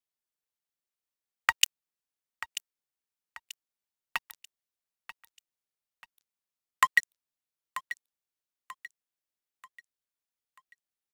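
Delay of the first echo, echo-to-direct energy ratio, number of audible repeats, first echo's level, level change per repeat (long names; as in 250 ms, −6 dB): 937 ms, −13.5 dB, 3, −14.0 dB, −8.0 dB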